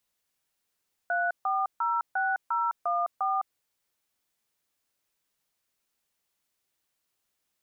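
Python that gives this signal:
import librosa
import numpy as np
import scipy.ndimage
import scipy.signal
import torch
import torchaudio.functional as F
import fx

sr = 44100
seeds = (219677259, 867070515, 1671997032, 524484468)

y = fx.dtmf(sr, digits='3406014', tone_ms=208, gap_ms=143, level_db=-27.0)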